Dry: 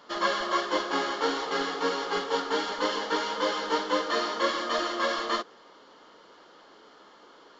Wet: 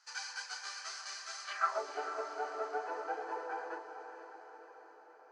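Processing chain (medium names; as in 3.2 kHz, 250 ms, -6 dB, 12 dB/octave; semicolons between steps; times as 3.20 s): rattle on loud lows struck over -39 dBFS, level -35 dBFS; band-pass sweep 3.6 kHz -> 290 Hz, 2.04–2.63 s; wide varispeed 1.43×; high-order bell 1.1 kHz +10.5 dB 1.2 oct; echo that smears into a reverb 471 ms, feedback 58%, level -9 dB; trim -6.5 dB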